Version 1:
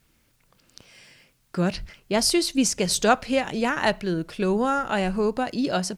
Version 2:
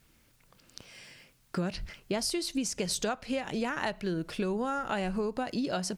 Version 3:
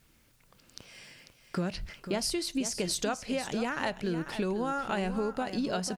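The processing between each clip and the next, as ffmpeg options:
-af "acompressor=threshold=-28dB:ratio=12"
-af "aecho=1:1:495:0.299"

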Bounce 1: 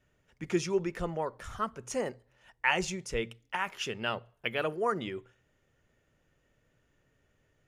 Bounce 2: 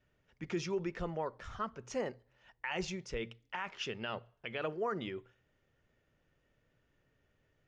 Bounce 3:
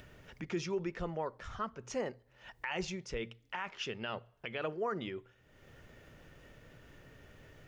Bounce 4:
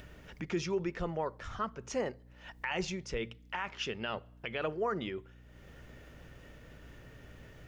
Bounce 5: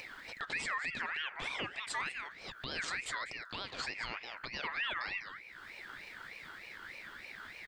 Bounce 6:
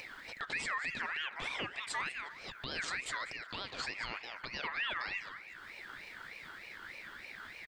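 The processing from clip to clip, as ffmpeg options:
-af "lowpass=f=5.8k:w=0.5412,lowpass=f=5.8k:w=1.3066,alimiter=limit=-23dB:level=0:latency=1:release=36,volume=-3.5dB"
-af "acompressor=mode=upward:threshold=-40dB:ratio=2.5"
-af "aeval=exprs='val(0)+0.00126*(sin(2*PI*60*n/s)+sin(2*PI*2*60*n/s)/2+sin(2*PI*3*60*n/s)/3+sin(2*PI*4*60*n/s)/4+sin(2*PI*5*60*n/s)/5)':c=same,volume=2.5dB"
-af "aecho=1:1:196:0.211,alimiter=level_in=8.5dB:limit=-24dB:level=0:latency=1:release=121,volume=-8.5dB,aeval=exprs='val(0)*sin(2*PI*1900*n/s+1900*0.25/3.3*sin(2*PI*3.3*n/s))':c=same,volume=6dB"
-filter_complex "[0:a]asplit=2[a][b];[b]adelay=360,highpass=300,lowpass=3.4k,asoftclip=type=hard:threshold=-35dB,volume=-16dB[c];[a][c]amix=inputs=2:normalize=0"

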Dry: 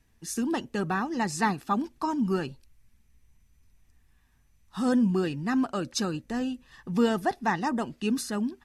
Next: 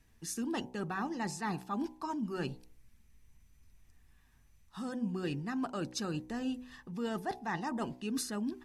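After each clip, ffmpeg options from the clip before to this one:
-af "areverse,acompressor=threshold=-32dB:ratio=12,areverse,bandreject=f=62.5:t=h:w=4,bandreject=f=125:t=h:w=4,bandreject=f=187.5:t=h:w=4,bandreject=f=250:t=h:w=4,bandreject=f=312.5:t=h:w=4,bandreject=f=375:t=h:w=4,bandreject=f=437.5:t=h:w=4,bandreject=f=500:t=h:w=4,bandreject=f=562.5:t=h:w=4,bandreject=f=625:t=h:w=4,bandreject=f=687.5:t=h:w=4,bandreject=f=750:t=h:w=4,bandreject=f=812.5:t=h:w=4,bandreject=f=875:t=h:w=4,bandreject=f=937.5:t=h:w=4,bandreject=f=1k:t=h:w=4,bandreject=f=1.0625k:t=h:w=4"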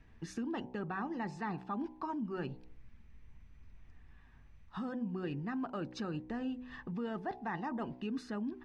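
-af "lowpass=2.5k,acompressor=threshold=-46dB:ratio=2.5,volume=6.5dB"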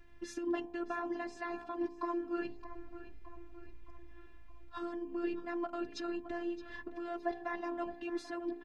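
-filter_complex "[0:a]afftfilt=real='hypot(re,im)*cos(PI*b)':imag='0':win_size=512:overlap=0.75,asplit=2[a][b];[b]adelay=617,lowpass=f=3.9k:p=1,volume=-13dB,asplit=2[c][d];[d]adelay=617,lowpass=f=3.9k:p=1,volume=0.54,asplit=2[e][f];[f]adelay=617,lowpass=f=3.9k:p=1,volume=0.54,asplit=2[g][h];[h]adelay=617,lowpass=f=3.9k:p=1,volume=0.54,asplit=2[i][j];[j]adelay=617,lowpass=f=3.9k:p=1,volume=0.54,asplit=2[k][l];[l]adelay=617,lowpass=f=3.9k:p=1,volume=0.54[m];[a][c][e][g][i][k][m]amix=inputs=7:normalize=0,volume=5.5dB"

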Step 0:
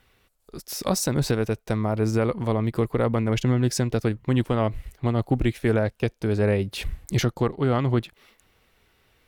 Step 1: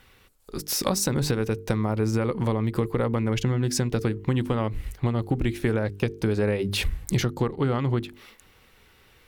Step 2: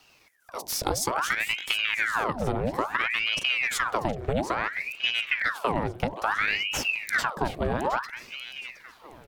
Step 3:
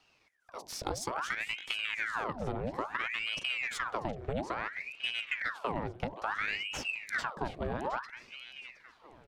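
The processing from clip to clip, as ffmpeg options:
-af "equalizer=f=660:w=6.7:g=-7.5,bandreject=f=50:t=h:w=6,bandreject=f=100:t=h:w=6,bandreject=f=150:t=h:w=6,bandreject=f=200:t=h:w=6,bandreject=f=250:t=h:w=6,bandreject=f=300:t=h:w=6,bandreject=f=350:t=h:w=6,bandreject=f=400:t=h:w=6,bandreject=f=450:t=h:w=6,acompressor=threshold=-27dB:ratio=6,volume=6.5dB"
-af "afreqshift=21,aecho=1:1:716|1432|2148|2864:0.224|0.0828|0.0306|0.0113,aeval=exprs='val(0)*sin(2*PI*1500*n/s+1500*0.85/0.59*sin(2*PI*0.59*n/s))':c=same"
-af "adynamicsmooth=sensitivity=2:basefreq=7.2k,volume=-8dB"

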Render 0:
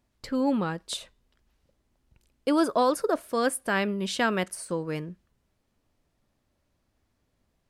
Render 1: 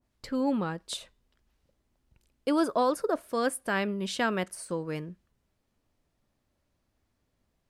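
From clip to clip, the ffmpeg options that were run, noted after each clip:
-af "adynamicequalizer=threshold=0.0141:dfrequency=1800:dqfactor=0.7:tfrequency=1800:tqfactor=0.7:attack=5:release=100:ratio=0.375:range=2:mode=cutabove:tftype=highshelf,volume=-2.5dB"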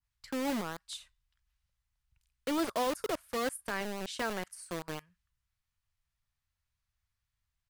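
-filter_complex "[0:a]acrossover=split=130|1000|5400[a][b][c][d];[a]acompressor=threshold=-58dB:ratio=6[e];[b]acrusher=bits=4:mix=0:aa=0.000001[f];[d]asplit=2[g][h];[h]adelay=35,volume=-10.5dB[i];[g][i]amix=inputs=2:normalize=0[j];[e][f][c][j]amix=inputs=4:normalize=0,volume=-6.5dB"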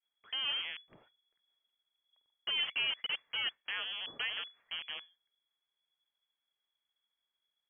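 -af "lowpass=f=2.9k:t=q:w=0.5098,lowpass=f=2.9k:t=q:w=0.6013,lowpass=f=2.9k:t=q:w=0.9,lowpass=f=2.9k:t=q:w=2.563,afreqshift=-3400,volume=-2.5dB"

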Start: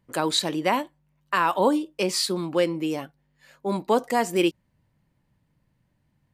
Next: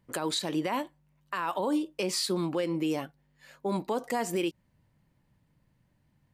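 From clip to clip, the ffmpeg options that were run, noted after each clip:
-af "alimiter=limit=-20.5dB:level=0:latency=1:release=119"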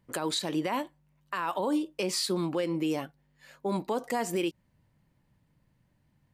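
-af anull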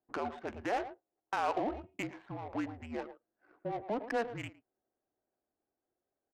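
-filter_complex "[0:a]highpass=f=580:t=q:w=0.5412,highpass=f=580:t=q:w=1.307,lowpass=f=2.9k:t=q:w=0.5176,lowpass=f=2.9k:t=q:w=0.7071,lowpass=f=2.9k:t=q:w=1.932,afreqshift=-230,asplit=2[a][b];[b]adelay=110,highpass=300,lowpass=3.4k,asoftclip=type=hard:threshold=-28.5dB,volume=-10dB[c];[a][c]amix=inputs=2:normalize=0,adynamicsmooth=sensitivity=6:basefreq=600"

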